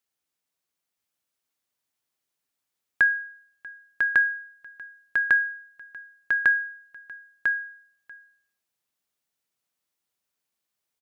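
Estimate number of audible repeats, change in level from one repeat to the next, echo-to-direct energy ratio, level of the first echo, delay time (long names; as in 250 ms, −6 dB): 1, repeats not evenly spaced, −4.5 dB, −4.5 dB, 998 ms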